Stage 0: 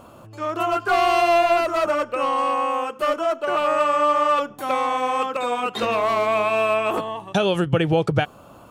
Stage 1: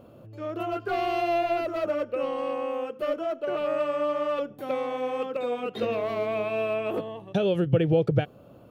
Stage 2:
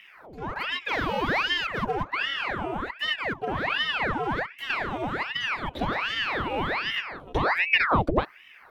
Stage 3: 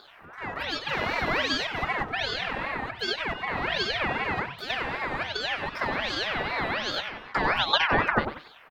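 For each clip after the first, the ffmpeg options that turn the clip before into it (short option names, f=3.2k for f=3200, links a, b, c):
-af "equalizer=f=125:t=o:w=1:g=7,equalizer=f=250:t=o:w=1:g=3,equalizer=f=500:t=o:w=1:g=8,equalizer=f=1k:t=o:w=1:g=-9,equalizer=f=8k:t=o:w=1:g=-12,volume=-8.5dB"
-af "aeval=exprs='val(0)*sin(2*PI*1300*n/s+1300*0.9/1.3*sin(2*PI*1.3*n/s))':c=same,volume=2.5dB"
-af "aecho=1:1:94|188|282:0.355|0.103|0.0298,aeval=exprs='val(0)*sin(2*PI*900*n/s+900*0.7/2.6*sin(2*PI*2.6*n/s))':c=same,volume=1.5dB"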